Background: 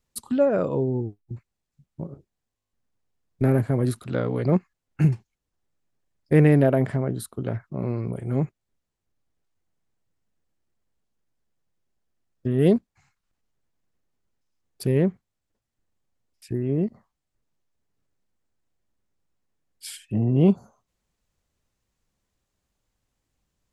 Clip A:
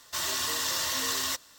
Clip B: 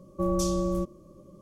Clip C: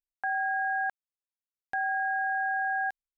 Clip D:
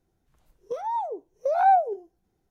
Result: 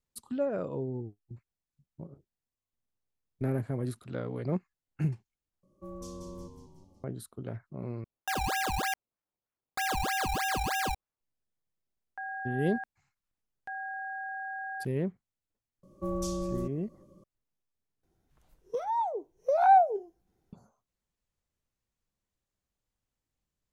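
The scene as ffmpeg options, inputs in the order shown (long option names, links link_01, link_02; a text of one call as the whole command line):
ffmpeg -i bed.wav -i cue0.wav -i cue1.wav -i cue2.wav -i cue3.wav -filter_complex "[2:a]asplit=2[link_01][link_02];[3:a]asplit=2[link_03][link_04];[0:a]volume=-10.5dB[link_05];[link_01]asplit=7[link_06][link_07][link_08][link_09][link_10][link_11][link_12];[link_07]adelay=184,afreqshift=-92,volume=-7dB[link_13];[link_08]adelay=368,afreqshift=-184,volume=-13dB[link_14];[link_09]adelay=552,afreqshift=-276,volume=-19dB[link_15];[link_10]adelay=736,afreqshift=-368,volume=-25.1dB[link_16];[link_11]adelay=920,afreqshift=-460,volume=-31.1dB[link_17];[link_12]adelay=1104,afreqshift=-552,volume=-37.1dB[link_18];[link_06][link_13][link_14][link_15][link_16][link_17][link_18]amix=inputs=7:normalize=0[link_19];[link_03]acrusher=samples=19:mix=1:aa=0.000001:lfo=1:lforange=19:lforate=3.2[link_20];[link_05]asplit=4[link_21][link_22][link_23][link_24];[link_21]atrim=end=5.634[link_25];[link_19]atrim=end=1.41,asetpts=PTS-STARTPTS,volume=-17dB[link_26];[link_22]atrim=start=7.036:end=8.044[link_27];[link_20]atrim=end=3.17,asetpts=PTS-STARTPTS,volume=-1.5dB[link_28];[link_23]atrim=start=11.206:end=18.034[link_29];[4:a]atrim=end=2.5,asetpts=PTS-STARTPTS,volume=-1.5dB[link_30];[link_24]atrim=start=20.526[link_31];[link_04]atrim=end=3.17,asetpts=PTS-STARTPTS,volume=-9dB,afade=type=in:duration=0.004:curve=hsin,afade=type=out:start_time=3.166:duration=0.004:curve=hsin,adelay=11940[link_32];[link_02]atrim=end=1.41,asetpts=PTS-STARTPTS,volume=-6.5dB,afade=type=in:duration=0.004:curve=hsin,afade=type=out:start_time=1.406:duration=0.004:curve=hsin,adelay=15830[link_33];[link_25][link_26]acrossfade=duration=0.004:curve1=hsin:curve2=hsin[link_34];[link_34][link_27]acrossfade=duration=0.004:curve1=hsin:curve2=hsin[link_35];[link_35][link_28]acrossfade=duration=0.004:curve1=hsin:curve2=hsin[link_36];[link_36][link_29]acrossfade=duration=0.004:curve1=hsin:curve2=hsin[link_37];[link_37][link_30]acrossfade=duration=0.004:curve1=hsin:curve2=hsin[link_38];[link_38][link_31]acrossfade=duration=0.004:curve1=hsin:curve2=hsin[link_39];[link_39][link_32][link_33]amix=inputs=3:normalize=0" out.wav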